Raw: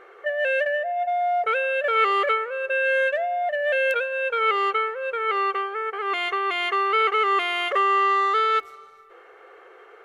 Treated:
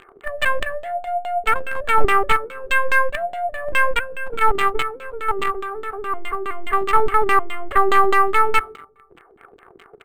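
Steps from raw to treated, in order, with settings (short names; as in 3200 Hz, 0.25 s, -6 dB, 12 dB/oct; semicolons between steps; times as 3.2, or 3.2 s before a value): tracing distortion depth 0.086 ms; tilt -3.5 dB/oct; speakerphone echo 0.16 s, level -16 dB; in parallel at -6 dB: companded quantiser 2-bit; on the sum: bell 520 Hz -13 dB 0.55 oct; LFO low-pass saw down 4.8 Hz 260–3400 Hz; decimation joined by straight lines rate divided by 4×; gain -3.5 dB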